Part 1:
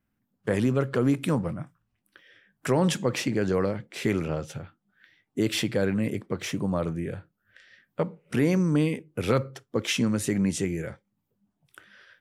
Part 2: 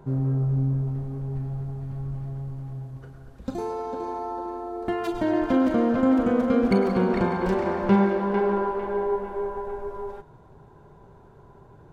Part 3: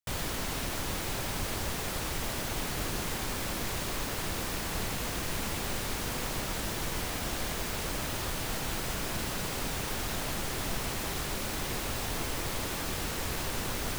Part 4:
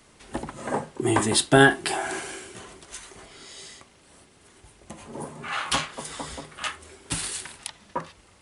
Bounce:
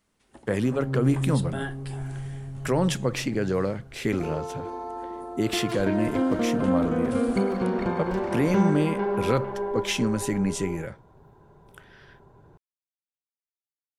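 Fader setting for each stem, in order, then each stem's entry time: -0.5 dB, -3.5 dB, off, -18.5 dB; 0.00 s, 0.65 s, off, 0.00 s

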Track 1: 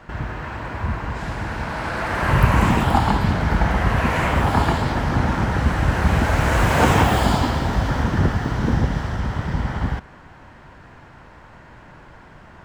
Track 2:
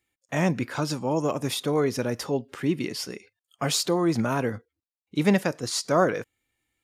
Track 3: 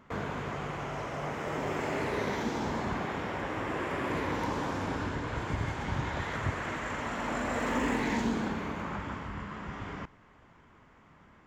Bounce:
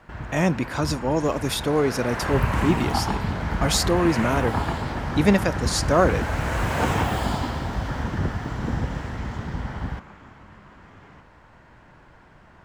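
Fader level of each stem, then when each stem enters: -7.0, +2.5, -10.5 dB; 0.00, 0.00, 1.15 s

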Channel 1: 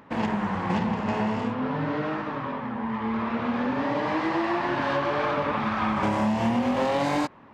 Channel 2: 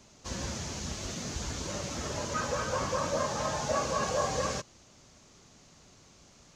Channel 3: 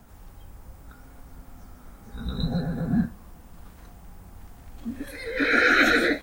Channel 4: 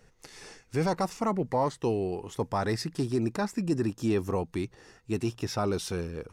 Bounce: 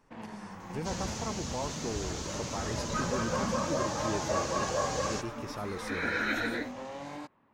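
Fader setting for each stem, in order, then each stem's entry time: -17.0, -1.0, -12.5, -9.5 dB; 0.00, 0.60, 0.50, 0.00 s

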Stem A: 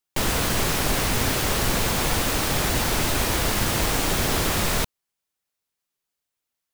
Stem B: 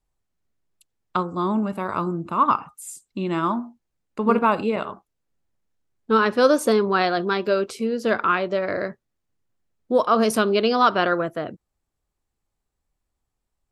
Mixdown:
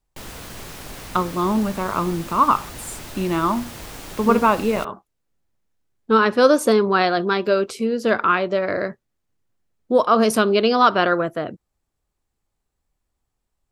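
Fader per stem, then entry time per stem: -13.5, +2.5 dB; 0.00, 0.00 s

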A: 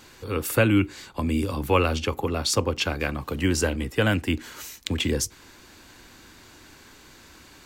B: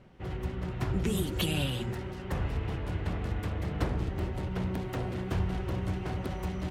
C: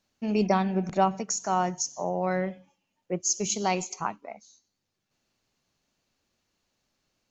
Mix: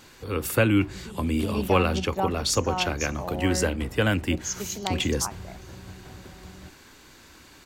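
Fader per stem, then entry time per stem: -1.0, -11.0, -5.0 dB; 0.00, 0.00, 1.20 s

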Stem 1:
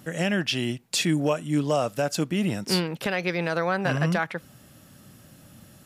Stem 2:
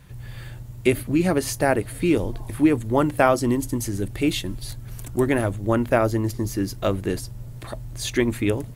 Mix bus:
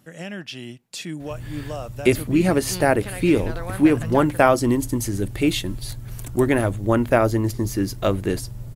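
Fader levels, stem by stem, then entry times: -8.5, +2.0 dB; 0.00, 1.20 s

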